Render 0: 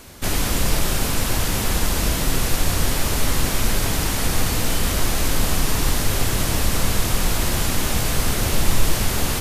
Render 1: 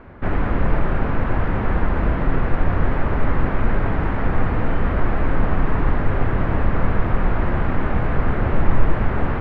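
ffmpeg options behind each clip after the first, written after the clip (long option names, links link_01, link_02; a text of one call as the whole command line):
ffmpeg -i in.wav -af "lowpass=frequency=1800:width=0.5412,lowpass=frequency=1800:width=1.3066,volume=2.5dB" out.wav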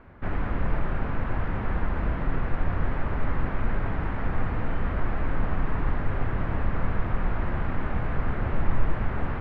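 ffmpeg -i in.wav -af "equalizer=frequency=400:width_type=o:width=1.8:gain=-3,volume=-7dB" out.wav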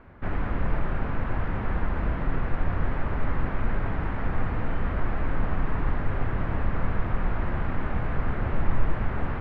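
ffmpeg -i in.wav -af anull out.wav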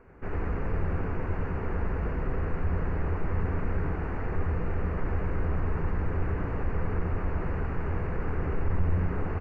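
ffmpeg -i in.wav -filter_complex "[0:a]superequalizer=7b=2.51:13b=0.251:15b=2.24,asplit=5[link_01][link_02][link_03][link_04][link_05];[link_02]adelay=88,afreqshift=-93,volume=-3dB[link_06];[link_03]adelay=176,afreqshift=-186,volume=-12.6dB[link_07];[link_04]adelay=264,afreqshift=-279,volume=-22.3dB[link_08];[link_05]adelay=352,afreqshift=-372,volume=-31.9dB[link_09];[link_01][link_06][link_07][link_08][link_09]amix=inputs=5:normalize=0,asoftclip=type=tanh:threshold=-10.5dB,volume=-5.5dB" out.wav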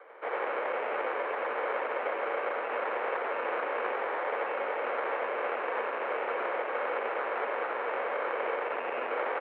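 ffmpeg -i in.wav -af "acrusher=samples=17:mix=1:aa=0.000001,highpass=frequency=410:width_type=q:width=0.5412,highpass=frequency=410:width_type=q:width=1.307,lowpass=frequency=2400:width_type=q:width=0.5176,lowpass=frequency=2400:width_type=q:width=0.7071,lowpass=frequency=2400:width_type=q:width=1.932,afreqshift=70,volume=8dB" out.wav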